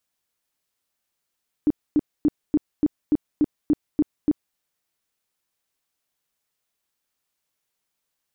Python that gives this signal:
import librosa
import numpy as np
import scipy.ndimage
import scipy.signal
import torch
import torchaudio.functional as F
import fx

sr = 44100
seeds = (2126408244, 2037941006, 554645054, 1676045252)

y = fx.tone_burst(sr, hz=299.0, cycles=10, every_s=0.29, bursts=10, level_db=-14.0)